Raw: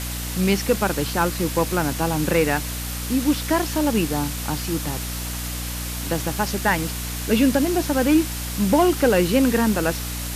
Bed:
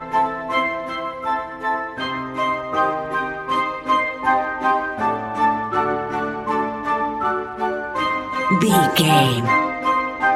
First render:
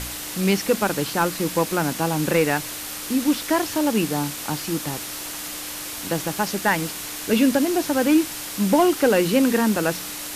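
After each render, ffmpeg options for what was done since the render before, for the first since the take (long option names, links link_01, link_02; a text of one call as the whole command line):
ffmpeg -i in.wav -af "bandreject=frequency=60:width_type=h:width=4,bandreject=frequency=120:width_type=h:width=4,bandreject=frequency=180:width_type=h:width=4,bandreject=frequency=240:width_type=h:width=4" out.wav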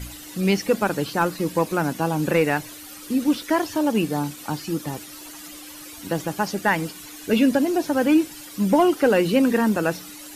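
ffmpeg -i in.wav -af "afftdn=noise_reduction=13:noise_floor=-33" out.wav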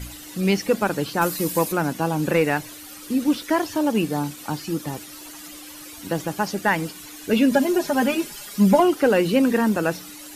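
ffmpeg -i in.wav -filter_complex "[0:a]asplit=3[link_01][link_02][link_03];[link_01]afade=type=out:start_time=1.21:duration=0.02[link_04];[link_02]aemphasis=mode=production:type=50kf,afade=type=in:start_time=1.21:duration=0.02,afade=type=out:start_time=1.71:duration=0.02[link_05];[link_03]afade=type=in:start_time=1.71:duration=0.02[link_06];[link_04][link_05][link_06]amix=inputs=3:normalize=0,asettb=1/sr,asplit=3[link_07][link_08][link_09];[link_07]atrim=end=7.514[link_10];[link_08]atrim=start=7.51:end=8.8,asetpts=PTS-STARTPTS,afade=type=in:duration=0.004:curve=qsin,afade=type=out:start_time=1.286:duration=0.004:curve=qsin,aecho=1:1:4.9:0.99,atrim=end_sample=56889[link_11];[link_09]atrim=start=8.796[link_12];[link_10][link_11]acrossfade=duration=0.004:curve1=hsin:curve2=qsin[link_13];[link_13][link_12]acrossfade=duration=0.004:curve1=qsin:curve2=hsin" out.wav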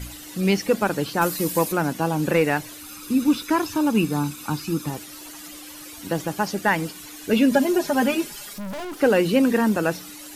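ffmpeg -i in.wav -filter_complex "[0:a]asettb=1/sr,asplit=3[link_01][link_02][link_03];[link_01]atrim=end=2.814[link_04];[link_02]atrim=start=2.81:end=4.9,asetpts=PTS-STARTPTS,afade=type=in:duration=0.004:curve=qsin,afade=type=out:start_time=2.086:duration=0.004:curve=qsin,aecho=1:1:0.8:0.5,atrim=end_sample=92169[link_05];[link_03]atrim=start=4.896[link_06];[link_04][link_05]acrossfade=duration=0.004:curve1=hsin:curve2=qsin[link_07];[link_07][link_06]acrossfade=duration=0.004:curve1=qsin:curve2=hsin,asettb=1/sr,asplit=3[link_08][link_09][link_10];[link_08]atrim=end=8.534[link_11];[link_09]atrim=start=8.53:end=9.01,asetpts=PTS-STARTPTS,afade=type=in:duration=0.004:curve=qsin,afade=type=out:start_time=0.476:duration=0.004:curve=qsin,aeval=exprs='(tanh(35.5*val(0)+0.45)-tanh(0.45))/35.5':channel_layout=same[link_12];[link_10]atrim=start=9.006[link_13];[link_11][link_12]acrossfade=duration=0.004:curve1=hsin:curve2=qsin[link_14];[link_14][link_13]acrossfade=duration=0.004:curve1=qsin:curve2=hsin" out.wav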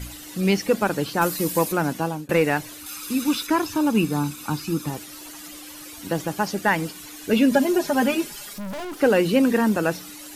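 ffmpeg -i in.wav -filter_complex "[0:a]asettb=1/sr,asplit=3[link_01][link_02][link_03];[link_01]atrim=end=2.864[link_04];[link_02]atrim=start=2.86:end=3.47,asetpts=PTS-STARTPTS,afade=type=in:duration=0.004:curve=qsin,afade=type=out:start_time=0.606:duration=0.004:curve=qsin,tiltshelf=frequency=700:gain=-5[link_05];[link_03]atrim=start=3.466[link_06];[link_04][link_05]acrossfade=duration=0.004:curve1=hsin:curve2=qsin[link_07];[link_07][link_06]acrossfade=duration=0.004:curve1=qsin:curve2=hsin,asplit=2[link_08][link_09];[link_08]atrim=end=2.29,asetpts=PTS-STARTPTS,afade=type=out:start_time=1.88:duration=0.41:curve=qsin[link_10];[link_09]atrim=start=2.29,asetpts=PTS-STARTPTS,afade=type=in:duration=0.004:curve=hsin[link_11];[link_10][link_11]concat=n=2:v=0:a=1" out.wav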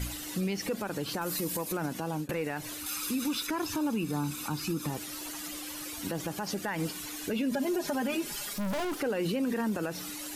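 ffmpeg -i in.wav -af "acompressor=threshold=-21dB:ratio=6,alimiter=limit=-23dB:level=0:latency=1:release=100" out.wav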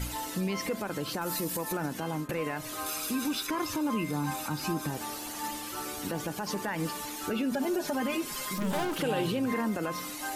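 ffmpeg -i in.wav -i bed.wav -filter_complex "[1:a]volume=-20.5dB[link_01];[0:a][link_01]amix=inputs=2:normalize=0" out.wav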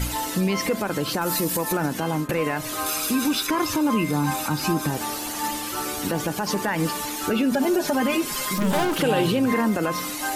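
ffmpeg -i in.wav -af "volume=8.5dB" out.wav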